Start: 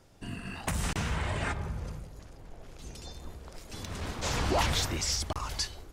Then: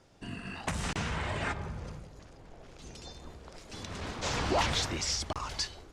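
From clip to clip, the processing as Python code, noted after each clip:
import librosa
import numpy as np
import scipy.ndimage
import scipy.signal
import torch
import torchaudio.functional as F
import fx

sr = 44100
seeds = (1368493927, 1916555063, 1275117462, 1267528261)

y = scipy.signal.sosfilt(scipy.signal.butter(2, 7300.0, 'lowpass', fs=sr, output='sos'), x)
y = fx.low_shelf(y, sr, hz=91.0, db=-7.5)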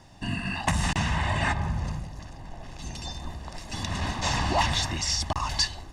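y = x + 0.68 * np.pad(x, (int(1.1 * sr / 1000.0), 0))[:len(x)]
y = fx.rider(y, sr, range_db=3, speed_s=0.5)
y = y * 10.0 ** (5.0 / 20.0)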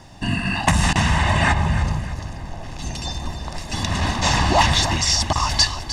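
y = fx.echo_feedback(x, sr, ms=305, feedback_pct=38, wet_db=-11.5)
y = y * 10.0 ** (8.0 / 20.0)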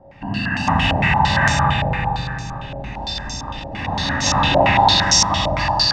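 y = fx.rev_fdn(x, sr, rt60_s=2.8, lf_ratio=1.3, hf_ratio=1.0, size_ms=11.0, drr_db=-7.5)
y = fx.filter_held_lowpass(y, sr, hz=8.8, low_hz=620.0, high_hz=6000.0)
y = y * 10.0 ** (-8.0 / 20.0)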